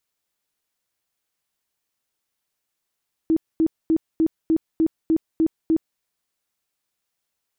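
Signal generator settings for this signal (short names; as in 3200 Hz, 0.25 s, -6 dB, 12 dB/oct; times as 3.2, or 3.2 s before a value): tone bursts 322 Hz, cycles 21, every 0.30 s, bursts 9, -14.5 dBFS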